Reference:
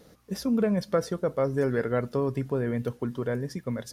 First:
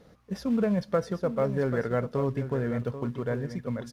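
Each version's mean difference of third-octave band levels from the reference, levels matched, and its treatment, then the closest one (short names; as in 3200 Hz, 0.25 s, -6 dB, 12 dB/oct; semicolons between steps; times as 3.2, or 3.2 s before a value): 3.0 dB: in parallel at -4.5 dB: short-mantissa float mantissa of 2-bit; on the sum: LPF 2200 Hz 6 dB/oct; bell 340 Hz -4.5 dB 0.98 oct; echo 0.787 s -11 dB; gain -3 dB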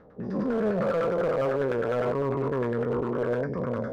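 8.0 dB: spectral dilation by 0.24 s; limiter -14 dBFS, peak gain reduction 6 dB; LFO low-pass saw down 9.9 Hz 590–1600 Hz; overloaded stage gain 16.5 dB; gain -5 dB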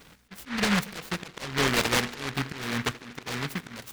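12.5 dB: bell 120 Hz -4 dB 0.29 oct; auto swell 0.278 s; on a send: narrowing echo 79 ms, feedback 83%, band-pass 360 Hz, level -19 dB; on the sum: noise-modulated delay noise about 1600 Hz, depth 0.45 ms; gain +2 dB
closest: first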